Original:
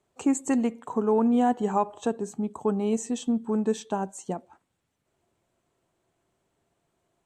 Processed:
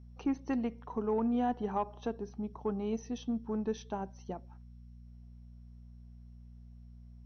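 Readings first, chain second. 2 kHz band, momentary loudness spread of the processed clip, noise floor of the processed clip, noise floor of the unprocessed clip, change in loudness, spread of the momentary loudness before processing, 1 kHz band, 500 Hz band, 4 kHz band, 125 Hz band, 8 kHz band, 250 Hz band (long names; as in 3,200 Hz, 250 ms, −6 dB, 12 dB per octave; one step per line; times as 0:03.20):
−8.0 dB, 22 LU, −52 dBFS, −77 dBFS, −9.0 dB, 10 LU, −8.5 dB, −9.0 dB, −8.5 dB, −6.0 dB, −18.0 dB, −8.5 dB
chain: hum with harmonics 60 Hz, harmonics 4, −43 dBFS −7 dB per octave
harmonic generator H 4 −29 dB, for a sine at −11.5 dBFS
level −8.5 dB
MP2 64 kbit/s 22,050 Hz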